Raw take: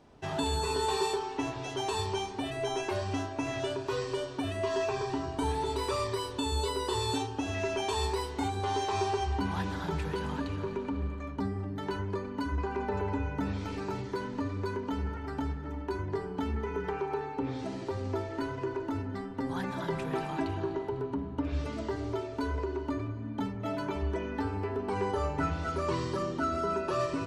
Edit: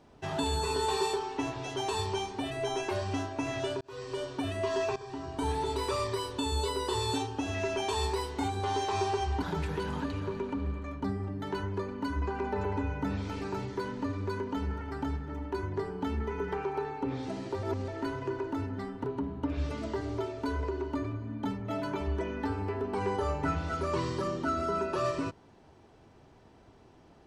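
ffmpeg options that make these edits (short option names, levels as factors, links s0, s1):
-filter_complex "[0:a]asplit=7[s0][s1][s2][s3][s4][s5][s6];[s0]atrim=end=3.81,asetpts=PTS-STARTPTS,afade=t=out:st=3.806:d=0.004:c=hsin[s7];[s1]atrim=start=3.81:end=4.96,asetpts=PTS-STARTPTS,afade=t=in:d=0.46,afade=t=out:st=1.146:d=0.004:c=hsin:silence=0.188365[s8];[s2]atrim=start=4.96:end=9.422,asetpts=PTS-STARTPTS,afade=t=in:d=0.55:silence=0.188365[s9];[s3]atrim=start=9.778:end=17.992[s10];[s4]atrim=start=17.988:end=18.242,asetpts=PTS-STARTPTS,areverse[s11];[s5]atrim=start=18.238:end=19.402[s12];[s6]atrim=start=20.988[s13];[s7][s8][s9]concat=n=3:v=0:a=1[s14];[s14][s10]acrossfade=d=0.004:c1=hsin:c2=hsin[s15];[s15][s11]acrossfade=d=0.004:c1=hsin:c2=hsin[s16];[s16][s12]acrossfade=d=0.004:c1=hsin:c2=hsin[s17];[s17][s13]acrossfade=d=0.004:c1=hsin:c2=hsin"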